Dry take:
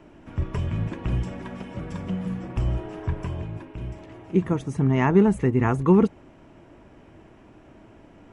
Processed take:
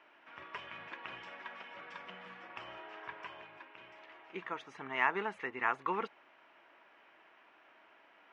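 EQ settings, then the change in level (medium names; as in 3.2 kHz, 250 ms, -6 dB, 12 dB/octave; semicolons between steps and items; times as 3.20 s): high-pass 1.4 kHz 12 dB/octave; distance through air 290 m; +3.0 dB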